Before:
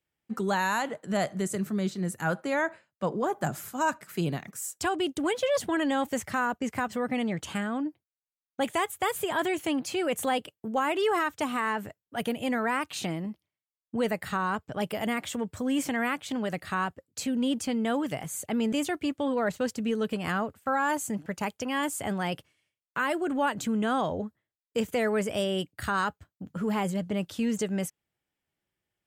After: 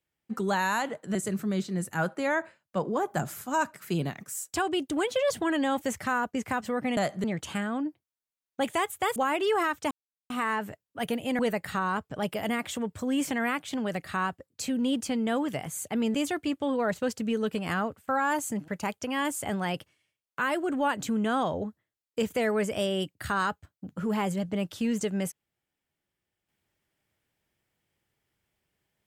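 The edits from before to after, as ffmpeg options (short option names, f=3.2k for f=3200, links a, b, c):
-filter_complex "[0:a]asplit=7[a][b][c][d][e][f][g];[a]atrim=end=1.152[h];[b]atrim=start=1.418:end=7.242[i];[c]atrim=start=1.148:end=1.422[j];[d]atrim=start=7.238:end=9.162[k];[e]atrim=start=10.718:end=11.47,asetpts=PTS-STARTPTS,afade=t=out:st=0.748:d=0.004:c=hsin,apad=pad_dur=0.39[l];[f]atrim=start=11.47:end=12.562,asetpts=PTS-STARTPTS,afade=t=in:d=0.004:c=hsin[m];[g]atrim=start=13.968[n];[h][i]acrossfade=d=0.004:c1=hsin:c2=hsin[o];[o][j]acrossfade=d=0.004:c1=hsin:c2=hsin[p];[p][k]acrossfade=d=0.004:c1=hsin:c2=hsin[q];[l][m]concat=n=2:v=0:a=1[r];[q][r]acrossfade=d=0.004:c1=hsin:c2=hsin[s];[s][n]acrossfade=d=0.004:c1=hsin:c2=hsin"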